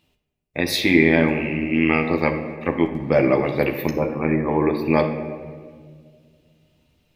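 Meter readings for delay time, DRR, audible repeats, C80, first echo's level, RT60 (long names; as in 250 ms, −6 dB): no echo audible, 3.0 dB, no echo audible, 10.0 dB, no echo audible, 1.9 s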